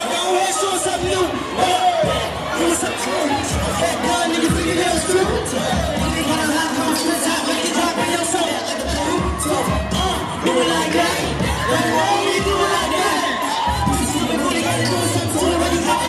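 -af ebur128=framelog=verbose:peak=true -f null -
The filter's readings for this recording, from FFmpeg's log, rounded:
Integrated loudness:
  I:         -18.3 LUFS
  Threshold: -28.3 LUFS
Loudness range:
  LRA:         1.3 LU
  Threshold: -38.4 LUFS
  LRA low:   -19.0 LUFS
  LRA high:  -17.7 LUFS
True peak:
  Peak:       -3.7 dBFS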